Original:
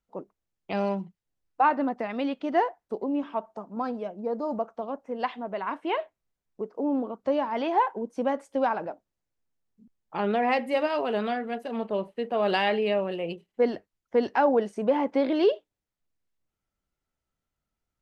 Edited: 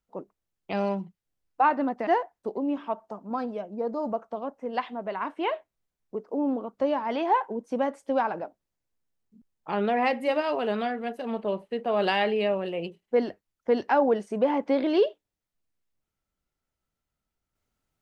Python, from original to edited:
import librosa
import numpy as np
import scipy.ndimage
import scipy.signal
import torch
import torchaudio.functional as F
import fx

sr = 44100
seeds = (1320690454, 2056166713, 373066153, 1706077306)

y = fx.edit(x, sr, fx.cut(start_s=2.07, length_s=0.46), tone=tone)